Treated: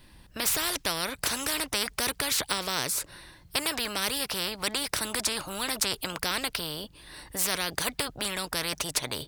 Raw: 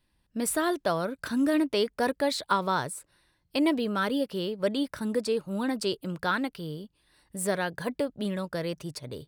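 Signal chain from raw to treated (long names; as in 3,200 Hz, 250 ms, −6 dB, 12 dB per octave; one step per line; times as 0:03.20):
dynamic equaliser 4,900 Hz, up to +6 dB, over −48 dBFS, Q 0.82
every bin compressed towards the loudest bin 4 to 1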